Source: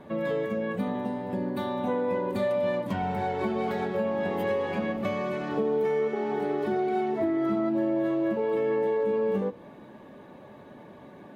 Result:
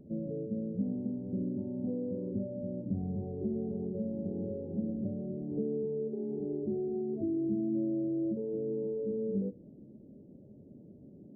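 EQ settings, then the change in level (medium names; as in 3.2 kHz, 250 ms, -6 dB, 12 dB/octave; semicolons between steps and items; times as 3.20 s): Gaussian low-pass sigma 23 samples; 0.0 dB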